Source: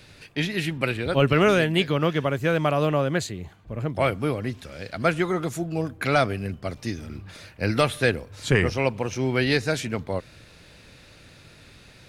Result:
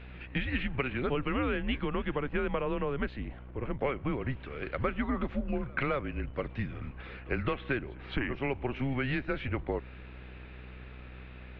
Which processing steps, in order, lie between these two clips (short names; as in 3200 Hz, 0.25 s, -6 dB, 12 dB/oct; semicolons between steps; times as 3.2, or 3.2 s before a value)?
compressor 10:1, threshold -26 dBFS, peak gain reduction 12.5 dB; mistuned SSB -130 Hz 150–3000 Hz; on a send: reverse echo 0.223 s -24 dB; on the sum: buzz 60 Hz, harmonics 34, -47 dBFS -8 dB/oct; speed mistake 24 fps film run at 25 fps